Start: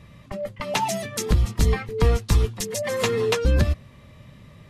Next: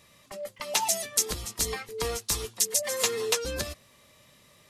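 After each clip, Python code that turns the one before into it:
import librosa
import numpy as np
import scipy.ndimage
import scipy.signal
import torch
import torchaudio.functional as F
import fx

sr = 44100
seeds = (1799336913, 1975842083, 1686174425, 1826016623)

y = fx.bass_treble(x, sr, bass_db=-15, treble_db=14)
y = F.gain(torch.from_numpy(y), -6.0).numpy()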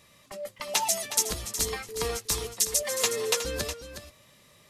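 y = x + 10.0 ** (-10.5 / 20.0) * np.pad(x, (int(365 * sr / 1000.0), 0))[:len(x)]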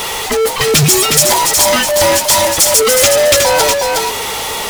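y = fx.band_invert(x, sr, width_hz=1000)
y = fx.power_curve(y, sr, exponent=0.35)
y = F.gain(torch.from_numpy(y), 6.5).numpy()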